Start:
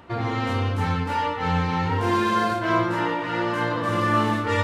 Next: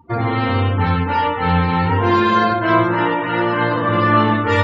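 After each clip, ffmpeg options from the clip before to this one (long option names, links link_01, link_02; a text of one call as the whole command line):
ffmpeg -i in.wav -af "afftdn=noise_reduction=33:noise_floor=-39,volume=7dB" out.wav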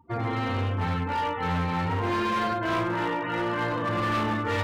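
ffmpeg -i in.wav -af "asoftclip=type=hard:threshold=-14dB,volume=-9dB" out.wav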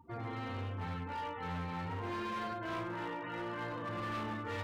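ffmpeg -i in.wav -af "alimiter=level_in=10dB:limit=-24dB:level=0:latency=1:release=195,volume=-10dB,volume=-1.5dB" out.wav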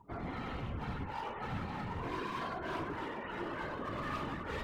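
ffmpeg -i in.wav -af "afftfilt=real='hypot(re,im)*cos(2*PI*random(0))':imag='hypot(re,im)*sin(2*PI*random(1))':win_size=512:overlap=0.75,volume=6dB" out.wav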